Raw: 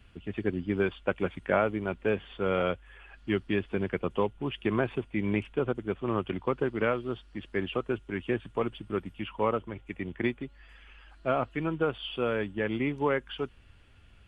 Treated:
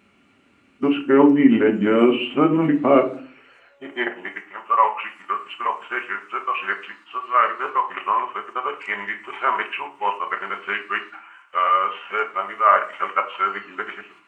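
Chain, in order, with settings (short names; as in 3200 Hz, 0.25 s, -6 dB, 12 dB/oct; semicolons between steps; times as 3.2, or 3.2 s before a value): whole clip reversed; gate -48 dBFS, range -6 dB; high-pass sweep 270 Hz -> 1200 Hz, 2.9–4.56; formant shift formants -2 st; shoebox room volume 340 m³, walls furnished, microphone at 1.2 m; gain +9 dB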